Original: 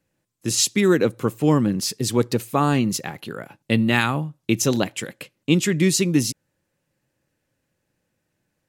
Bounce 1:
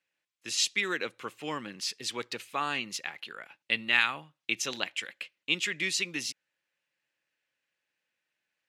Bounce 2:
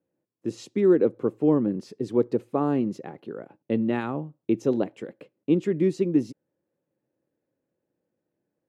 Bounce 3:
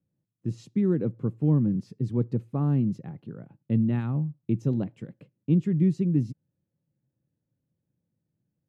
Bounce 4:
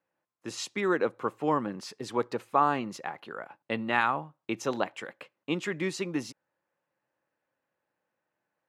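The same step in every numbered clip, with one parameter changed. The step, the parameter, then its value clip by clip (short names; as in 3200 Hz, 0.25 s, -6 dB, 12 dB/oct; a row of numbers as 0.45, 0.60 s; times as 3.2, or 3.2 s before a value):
band-pass, frequency: 2600, 390, 140, 990 Hz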